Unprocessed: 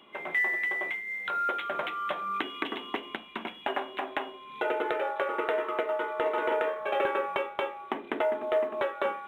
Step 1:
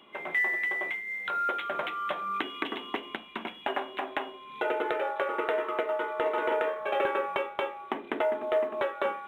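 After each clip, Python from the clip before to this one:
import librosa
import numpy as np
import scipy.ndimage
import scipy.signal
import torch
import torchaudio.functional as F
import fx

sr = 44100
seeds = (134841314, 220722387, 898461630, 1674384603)

y = x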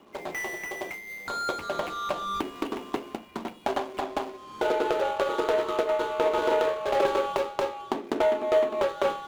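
y = scipy.signal.medfilt(x, 25)
y = y * 10.0 ** (5.5 / 20.0)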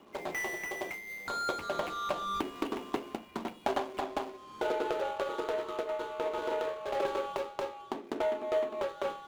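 y = fx.rider(x, sr, range_db=5, speed_s=2.0)
y = y * 10.0 ** (-7.0 / 20.0)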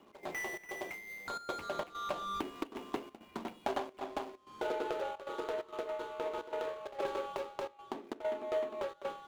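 y = fx.step_gate(x, sr, bpm=131, pattern='x.xxx.xxxxx', floor_db=-12.0, edge_ms=4.5)
y = y * 10.0 ** (-4.0 / 20.0)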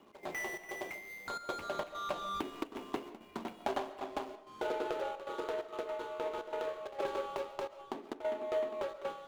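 y = fx.rev_freeverb(x, sr, rt60_s=0.53, hf_ratio=0.55, predelay_ms=95, drr_db=14.0)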